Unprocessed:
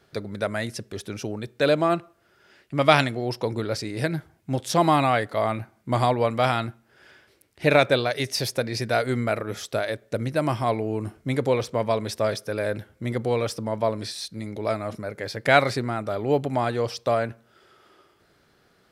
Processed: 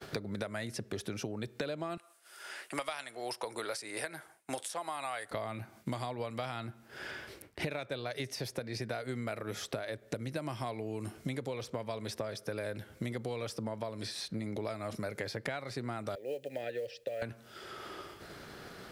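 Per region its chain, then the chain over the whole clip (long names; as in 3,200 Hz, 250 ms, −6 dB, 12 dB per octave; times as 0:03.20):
0:01.97–0:05.31: high-pass filter 700 Hz + parametric band 9,400 Hz +14.5 dB 0.71 octaves
0:16.15–0:17.22: formant filter e + parametric band 970 Hz −4 dB 1.5 octaves + log-companded quantiser 8 bits
whole clip: downward compressor 16 to 1, threshold −34 dBFS; downward expander −58 dBFS; multiband upward and downward compressor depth 70%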